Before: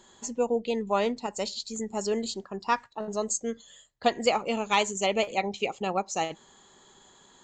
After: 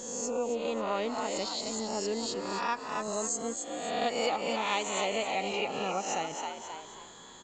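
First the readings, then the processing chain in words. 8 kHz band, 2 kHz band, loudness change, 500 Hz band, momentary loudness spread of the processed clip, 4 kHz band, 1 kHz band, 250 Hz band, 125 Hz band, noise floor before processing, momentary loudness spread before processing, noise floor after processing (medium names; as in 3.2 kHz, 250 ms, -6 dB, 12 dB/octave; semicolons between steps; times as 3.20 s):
0.0 dB, -2.5 dB, -3.0 dB, -3.5 dB, 8 LU, -1.5 dB, -3.0 dB, -4.0 dB, -4.5 dB, -58 dBFS, 9 LU, -49 dBFS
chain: reverse spectral sustain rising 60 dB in 0.84 s; frequency-shifting echo 267 ms, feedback 32%, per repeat +70 Hz, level -8 dB; compression 2:1, threshold -40 dBFS, peak gain reduction 13.5 dB; trim +3 dB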